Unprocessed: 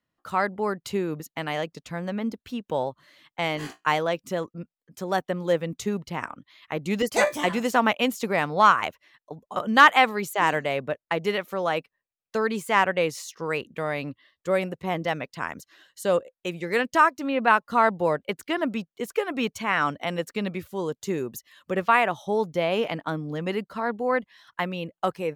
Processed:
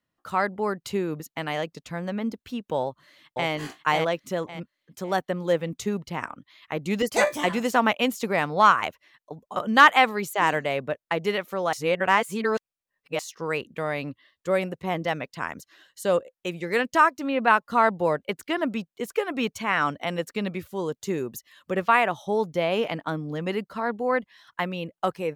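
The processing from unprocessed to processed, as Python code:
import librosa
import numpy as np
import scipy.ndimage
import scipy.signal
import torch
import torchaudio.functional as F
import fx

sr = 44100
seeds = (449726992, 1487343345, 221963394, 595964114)

y = fx.echo_throw(x, sr, start_s=2.81, length_s=0.68, ms=550, feedback_pct=30, wet_db=-3.0)
y = fx.edit(y, sr, fx.reverse_span(start_s=11.73, length_s=1.46), tone=tone)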